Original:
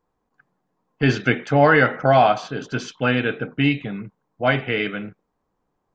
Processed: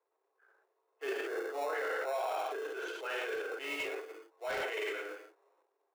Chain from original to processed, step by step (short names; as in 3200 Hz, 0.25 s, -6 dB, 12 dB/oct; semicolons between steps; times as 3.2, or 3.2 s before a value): Wiener smoothing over 9 samples; 1.1–1.73 LPF 1300 Hz 24 dB/oct; non-linear reverb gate 0.24 s falling, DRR -2 dB; transient shaper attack -10 dB, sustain +10 dB; in parallel at -10 dB: sample-and-hold 28×; on the sum: steep high-pass 350 Hz 72 dB/oct; 3.35–4.63 hard clip -15 dBFS, distortion -22 dB; limiter -8 dBFS, peak gain reduction 9 dB; compressor 2:1, threshold -32 dBFS, peak gain reduction 10.5 dB; gain -9 dB